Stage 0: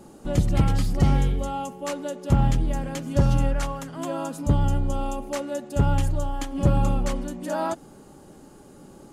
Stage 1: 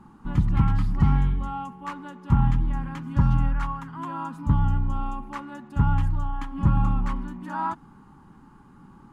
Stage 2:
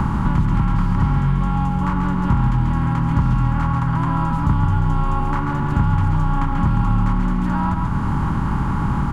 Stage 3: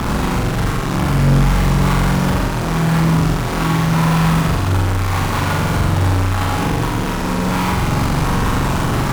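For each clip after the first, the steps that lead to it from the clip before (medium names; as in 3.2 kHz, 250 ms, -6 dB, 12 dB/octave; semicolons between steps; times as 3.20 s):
FFT filter 220 Hz 0 dB, 610 Hz -21 dB, 950 Hz +6 dB, 6.8 kHz -19 dB
spectral levelling over time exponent 0.4; delay 137 ms -6 dB; three bands compressed up and down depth 100%; trim -1 dB
reverb removal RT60 0.52 s; fuzz box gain 44 dB, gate -37 dBFS; flutter echo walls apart 7.4 m, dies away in 0.98 s; trim -5.5 dB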